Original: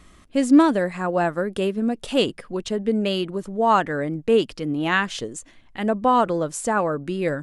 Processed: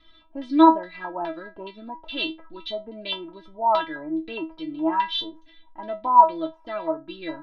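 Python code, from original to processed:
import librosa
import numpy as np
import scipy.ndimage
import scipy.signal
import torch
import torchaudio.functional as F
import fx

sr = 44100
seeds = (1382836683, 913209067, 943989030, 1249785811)

y = fx.filter_lfo_lowpass(x, sr, shape='square', hz=2.4, low_hz=900.0, high_hz=3700.0, q=7.0)
y = scipy.signal.savgol_filter(y, 15, 4, mode='constant')
y = fx.stiff_resonator(y, sr, f0_hz=320.0, decay_s=0.23, stiffness=0.002)
y = y * 10.0 ** (5.5 / 20.0)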